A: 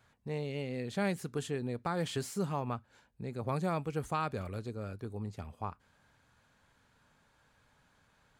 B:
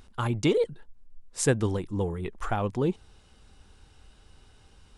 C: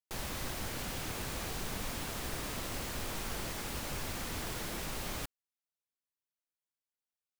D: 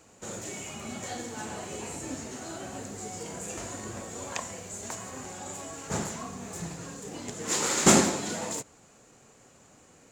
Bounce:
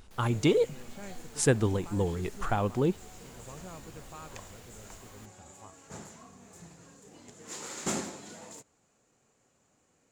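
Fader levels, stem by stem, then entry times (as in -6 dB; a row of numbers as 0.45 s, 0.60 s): -13.5 dB, -0.5 dB, -16.0 dB, -13.5 dB; 0.00 s, 0.00 s, 0.00 s, 0.00 s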